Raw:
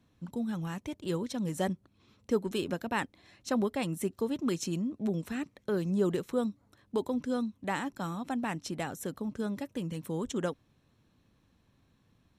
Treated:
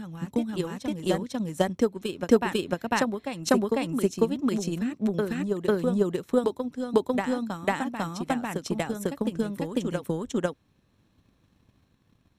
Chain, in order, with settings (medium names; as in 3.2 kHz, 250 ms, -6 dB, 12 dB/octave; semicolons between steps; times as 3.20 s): transient shaper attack +11 dB, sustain -1 dB; reverse echo 498 ms -4 dB